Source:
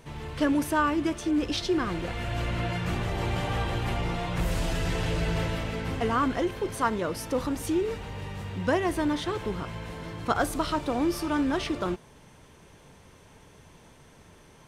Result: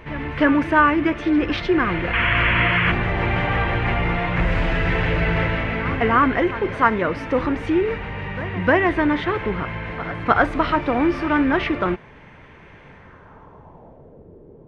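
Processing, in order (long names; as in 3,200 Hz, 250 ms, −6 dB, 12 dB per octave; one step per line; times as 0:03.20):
sound drawn into the spectrogram noise, 0:02.13–0:02.92, 920–3,400 Hz −32 dBFS
low-pass filter sweep 2,100 Hz → 440 Hz, 0:12.90–0:14.30
backwards echo 304 ms −16 dB
level +7 dB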